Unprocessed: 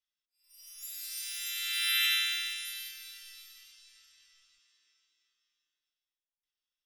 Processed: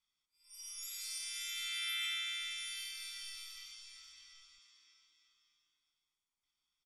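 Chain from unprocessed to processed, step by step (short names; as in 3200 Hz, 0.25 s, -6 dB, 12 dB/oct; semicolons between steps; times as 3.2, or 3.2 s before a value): LPF 10000 Hz 24 dB/oct; comb 0.9 ms, depth 77%; compressor 2.5:1, threshold -46 dBFS, peak gain reduction 14.5 dB; gain +3 dB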